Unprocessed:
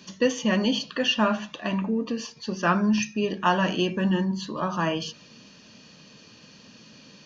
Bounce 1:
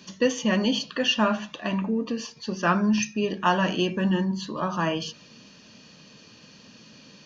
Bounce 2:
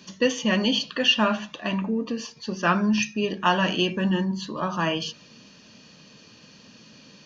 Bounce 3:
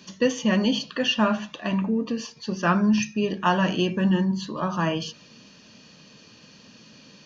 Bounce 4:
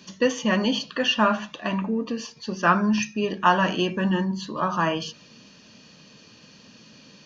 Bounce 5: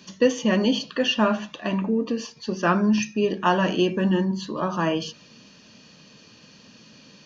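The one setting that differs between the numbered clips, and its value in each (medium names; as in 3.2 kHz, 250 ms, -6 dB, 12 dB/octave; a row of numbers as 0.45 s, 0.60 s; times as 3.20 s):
dynamic bell, frequency: 8.4 kHz, 3.1 kHz, 120 Hz, 1.2 kHz, 380 Hz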